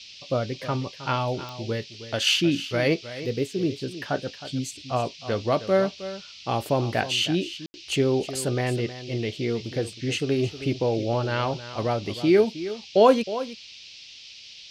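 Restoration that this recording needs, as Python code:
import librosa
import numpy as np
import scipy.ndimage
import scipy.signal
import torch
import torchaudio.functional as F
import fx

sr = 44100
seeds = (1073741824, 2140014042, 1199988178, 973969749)

y = fx.fix_declick_ar(x, sr, threshold=10.0)
y = fx.fix_ambience(y, sr, seeds[0], print_start_s=14.05, print_end_s=14.55, start_s=7.66, end_s=7.74)
y = fx.noise_reduce(y, sr, print_start_s=14.05, print_end_s=14.55, reduce_db=26.0)
y = fx.fix_echo_inverse(y, sr, delay_ms=315, level_db=-13.5)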